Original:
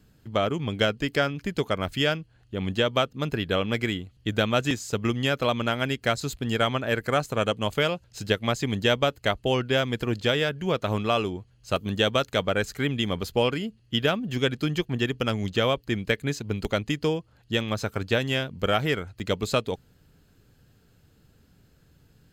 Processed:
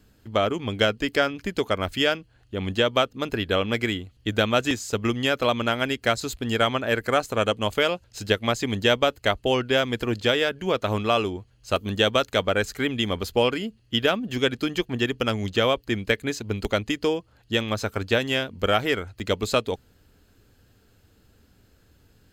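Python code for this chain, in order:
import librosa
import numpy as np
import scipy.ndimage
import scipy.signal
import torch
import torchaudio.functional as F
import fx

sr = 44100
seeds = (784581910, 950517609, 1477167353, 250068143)

y = fx.peak_eq(x, sr, hz=150.0, db=-14.0, octaves=0.37)
y = F.gain(torch.from_numpy(y), 2.5).numpy()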